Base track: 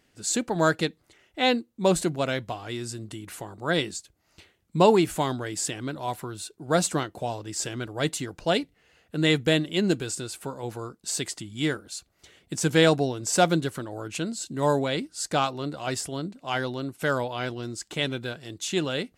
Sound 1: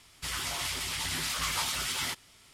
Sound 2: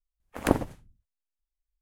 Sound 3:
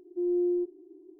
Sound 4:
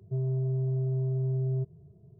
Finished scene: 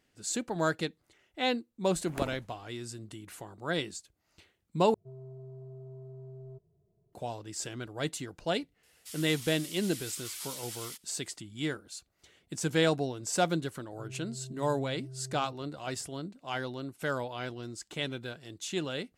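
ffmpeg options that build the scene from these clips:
-filter_complex "[4:a]asplit=2[a][b];[0:a]volume=-7dB[c];[a]equalizer=f=120:w=0.41:g=-13[d];[1:a]aderivative[e];[b]alimiter=level_in=7dB:limit=-24dB:level=0:latency=1:release=71,volume=-7dB[f];[c]asplit=2[g][h];[g]atrim=end=4.944[i];[d]atrim=end=2.19,asetpts=PTS-STARTPTS,volume=-6dB[j];[h]atrim=start=7.126[k];[2:a]atrim=end=1.81,asetpts=PTS-STARTPTS,volume=-12dB,afade=t=in:d=0.004:c=hsin,afade=t=out:st=1.806:d=0.004:c=hsin,adelay=1710[l];[e]atrim=end=2.53,asetpts=PTS-STARTPTS,volume=-7dB,afade=t=in:d=0.004:c=hsin,afade=t=out:st=2.526:d=0.004:c=hsin,adelay=8830[m];[f]atrim=end=2.19,asetpts=PTS-STARTPTS,volume=-10dB,afade=t=in:d=0.004:c=hsin,afade=t=out:st=2.186:d=0.004:c=hsin,adelay=13880[n];[i][j]acrossfade=d=0.004:c1=hsin:c2=hsin[o];[o][k]acrossfade=d=0.004:c1=hsin:c2=hsin[p];[p][l][m][n]amix=inputs=4:normalize=0"

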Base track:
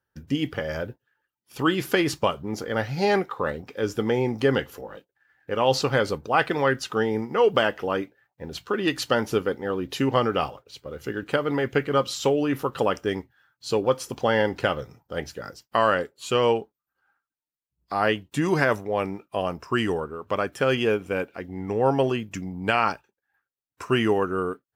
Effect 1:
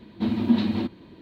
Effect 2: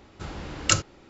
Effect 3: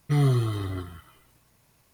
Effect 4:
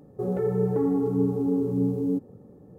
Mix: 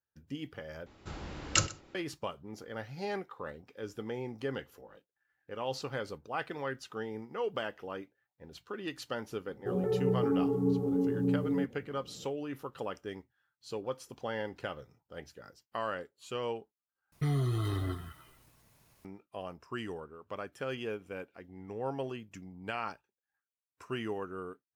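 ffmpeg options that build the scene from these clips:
-filter_complex "[0:a]volume=-15dB[a];[2:a]aecho=1:1:125:0.1[b];[3:a]acompressor=threshold=-25dB:ratio=6:attack=3.2:release=140:knee=1:detection=peak[c];[a]asplit=3[d][e][f];[d]atrim=end=0.864[g];[b]atrim=end=1.09,asetpts=PTS-STARTPTS,volume=-6dB[h];[e]atrim=start=1.946:end=17.124[i];[c]atrim=end=1.93,asetpts=PTS-STARTPTS,volume=-2dB[j];[f]atrim=start=19.046[k];[4:a]atrim=end=2.78,asetpts=PTS-STARTPTS,volume=-5dB,afade=t=in:d=0.004:c=hsin,afade=t=out:st=2.776:d=0.004:c=hsin,adelay=9470[l];[g][h]acrossfade=d=0.004:c1=hsin:c2=hsin[m];[m][i]acrossfade=d=0.004:c1=hsin:c2=hsin[n];[n][j]acrossfade=d=0.004:c1=hsin:c2=hsin[o];[o][k]acrossfade=d=0.004:c1=hsin:c2=hsin[p];[p][l]amix=inputs=2:normalize=0"

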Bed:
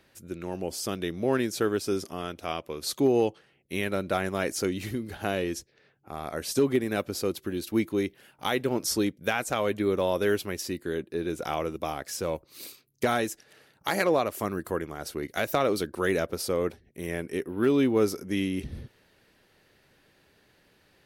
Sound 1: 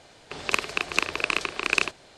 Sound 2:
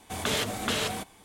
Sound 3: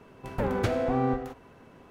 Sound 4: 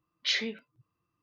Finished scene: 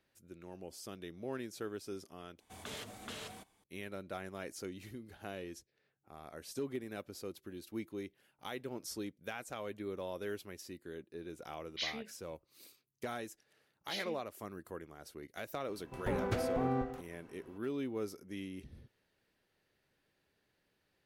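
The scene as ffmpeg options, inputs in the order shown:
-filter_complex "[4:a]asplit=2[a][b];[0:a]volume=-15.5dB,asplit=2[c][d];[c]atrim=end=2.404[e];[2:a]atrim=end=1.24,asetpts=PTS-STARTPTS,volume=-17dB[f];[d]atrim=start=3.636[g];[a]atrim=end=1.22,asetpts=PTS-STARTPTS,volume=-10dB,afade=t=in:d=0.004:c=hsin,afade=t=out:st=1.216:d=0.004:c=hsin,adelay=11520[h];[b]atrim=end=1.22,asetpts=PTS-STARTPTS,volume=-13.5dB,afade=t=in:d=0.004:c=hsin,afade=t=out:st=1.216:d=0.004:c=hsin,adelay=601524S[i];[3:a]atrim=end=1.9,asetpts=PTS-STARTPTS,volume=-7.5dB,afade=t=in:d=0.004:c=hsin,afade=t=out:st=1.896:d=0.004:c=hsin,adelay=15680[j];[e][f]acrossfade=d=0.004:c1=hsin:c2=hsin[k];[k][g]acrossfade=d=0.004:c1=hsin:c2=hsin[l];[l][h][i][j]amix=inputs=4:normalize=0"

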